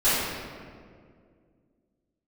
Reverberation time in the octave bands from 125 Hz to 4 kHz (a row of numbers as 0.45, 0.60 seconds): 2.6, 2.8, 2.4, 1.8, 1.5, 1.1 seconds